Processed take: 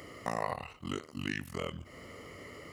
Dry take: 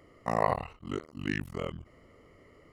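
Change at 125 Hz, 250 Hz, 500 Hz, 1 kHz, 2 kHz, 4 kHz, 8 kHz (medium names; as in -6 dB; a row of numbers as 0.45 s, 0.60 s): -4.5 dB, -3.5 dB, -6.0 dB, -6.0 dB, -1.5 dB, +3.0 dB, +4.5 dB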